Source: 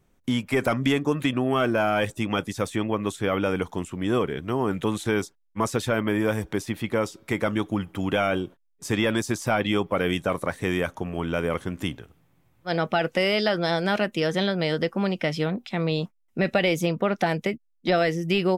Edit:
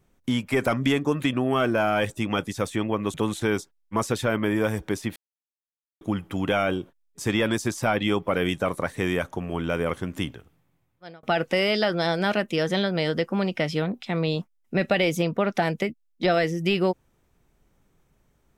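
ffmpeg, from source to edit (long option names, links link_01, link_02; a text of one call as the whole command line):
ffmpeg -i in.wav -filter_complex "[0:a]asplit=5[link_01][link_02][link_03][link_04][link_05];[link_01]atrim=end=3.142[link_06];[link_02]atrim=start=4.778:end=6.8,asetpts=PTS-STARTPTS,afade=type=out:start_time=2.018:duration=0.004:curve=hsin[link_07];[link_03]atrim=start=6.8:end=7.65,asetpts=PTS-STARTPTS,volume=0[link_08];[link_04]atrim=start=7.65:end=12.87,asetpts=PTS-STARTPTS,afade=type=in:duration=0.004:curve=hsin,afade=type=out:start_time=4.27:duration=0.95[link_09];[link_05]atrim=start=12.87,asetpts=PTS-STARTPTS,afade=type=in:duration=0.004:curve=hsin[link_10];[link_07][link_08][link_09][link_10]concat=n=4:v=0:a=1[link_11];[link_06][link_11]acrossfade=duration=0.004:curve1=hsin:curve2=hsin" out.wav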